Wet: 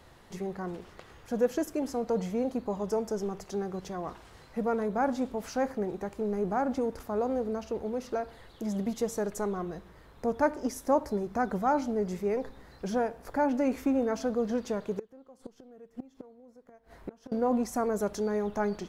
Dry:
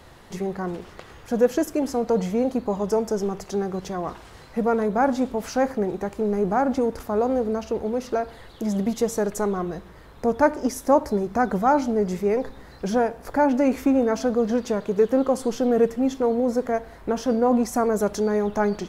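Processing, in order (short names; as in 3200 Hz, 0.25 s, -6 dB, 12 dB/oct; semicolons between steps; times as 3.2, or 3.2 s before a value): 14.99–17.32 flipped gate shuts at -17 dBFS, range -25 dB; gain -7.5 dB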